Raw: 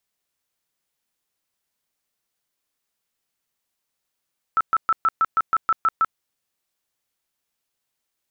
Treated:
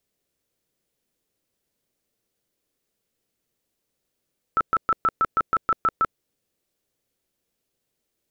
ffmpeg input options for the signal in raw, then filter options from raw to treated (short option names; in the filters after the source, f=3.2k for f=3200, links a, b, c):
-f lavfi -i "aevalsrc='0.188*sin(2*PI*1320*mod(t,0.16))*lt(mod(t,0.16),49/1320)':d=1.6:s=44100"
-af "lowshelf=f=660:t=q:w=1.5:g=8.5"